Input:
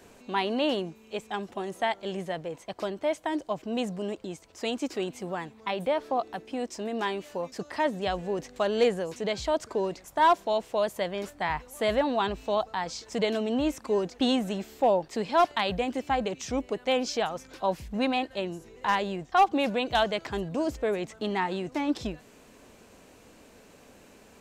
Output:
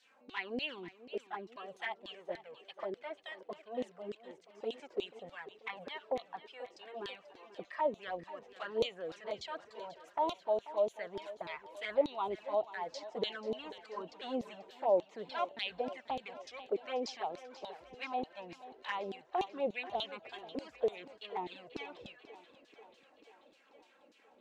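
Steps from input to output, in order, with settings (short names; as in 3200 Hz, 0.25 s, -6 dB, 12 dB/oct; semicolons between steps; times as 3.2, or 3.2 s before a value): LFO band-pass saw down 3.4 Hz 340–4400 Hz; envelope flanger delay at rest 4 ms, full sweep at -30.5 dBFS; thinning echo 0.487 s, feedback 66%, high-pass 170 Hz, level -15.5 dB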